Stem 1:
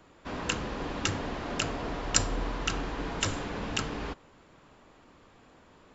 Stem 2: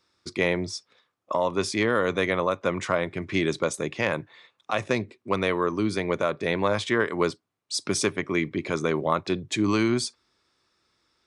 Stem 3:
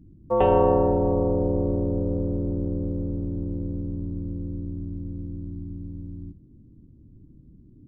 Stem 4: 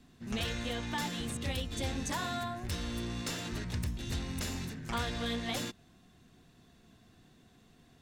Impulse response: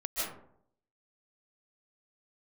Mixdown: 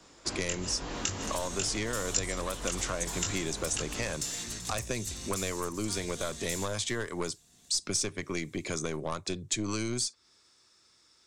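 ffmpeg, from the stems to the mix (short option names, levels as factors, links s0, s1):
-filter_complex "[0:a]flanger=delay=20:depth=2.9:speed=0.54,volume=1.12,asplit=2[s0][s1];[s1]volume=0.141[s2];[1:a]aeval=exprs='(tanh(4.47*val(0)+0.5)-tanh(0.5))/4.47':c=same,volume=1.33[s3];[3:a]highshelf=f=4400:g=10.5,adelay=950,volume=0.447,asplit=3[s4][s5][s6];[s5]volume=0.0794[s7];[s6]volume=0.133[s8];[4:a]atrim=start_sample=2205[s9];[s2][s7]amix=inputs=2:normalize=0[s10];[s10][s9]afir=irnorm=-1:irlink=0[s11];[s8]aecho=0:1:382|764|1146|1528|1910:1|0.37|0.137|0.0507|0.0187[s12];[s0][s3][s4][s11][s12]amix=inputs=5:normalize=0,equalizer=f=7300:w=0.84:g=14,acrossover=split=100|6300[s13][s14][s15];[s13]acompressor=threshold=0.0112:ratio=4[s16];[s14]acompressor=threshold=0.0224:ratio=4[s17];[s15]acompressor=threshold=0.0141:ratio=4[s18];[s16][s17][s18]amix=inputs=3:normalize=0"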